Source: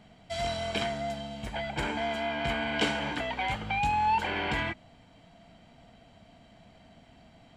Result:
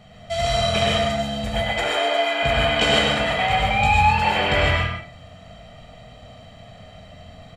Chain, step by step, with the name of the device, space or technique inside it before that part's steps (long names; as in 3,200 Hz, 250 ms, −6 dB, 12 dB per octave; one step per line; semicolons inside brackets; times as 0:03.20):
0:01.64–0:02.43: Butterworth high-pass 270 Hz 72 dB per octave
microphone above a desk (comb filter 1.6 ms, depth 62%; convolution reverb RT60 0.40 s, pre-delay 95 ms, DRR 2 dB)
reverb whose tail is shaped and stops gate 170 ms rising, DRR −1 dB
level +5.5 dB